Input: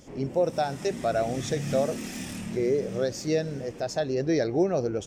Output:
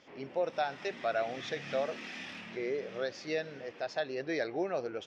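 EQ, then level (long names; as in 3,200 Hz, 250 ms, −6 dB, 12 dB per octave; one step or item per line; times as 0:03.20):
resonant band-pass 2,200 Hz, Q 0.53
high-frequency loss of the air 300 metres
high-shelf EQ 2,700 Hz +10.5 dB
0.0 dB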